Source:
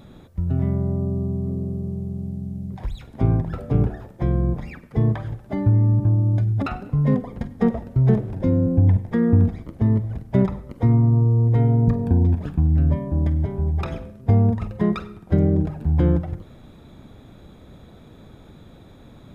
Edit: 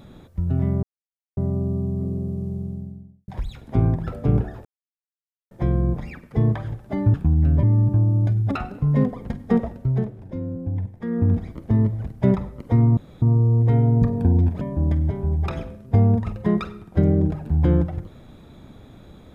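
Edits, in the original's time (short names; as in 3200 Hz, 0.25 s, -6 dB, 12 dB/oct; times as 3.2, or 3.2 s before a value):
0.83 insert silence 0.54 s
1.99–2.74 studio fade out
4.11 insert silence 0.86 s
7.75–9.59 dip -10.5 dB, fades 0.48 s linear
11.08 insert room tone 0.25 s
12.47–12.96 move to 5.74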